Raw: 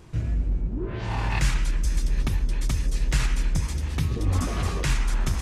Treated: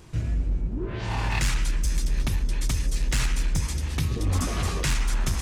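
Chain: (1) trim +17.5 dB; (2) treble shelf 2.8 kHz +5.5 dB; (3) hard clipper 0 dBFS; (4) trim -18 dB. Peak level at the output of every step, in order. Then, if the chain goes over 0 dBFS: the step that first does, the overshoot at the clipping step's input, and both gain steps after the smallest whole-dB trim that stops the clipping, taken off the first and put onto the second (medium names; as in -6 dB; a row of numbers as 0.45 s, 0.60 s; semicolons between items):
+6.0 dBFS, +7.0 dBFS, 0.0 dBFS, -18.0 dBFS; step 1, 7.0 dB; step 1 +10.5 dB, step 4 -11 dB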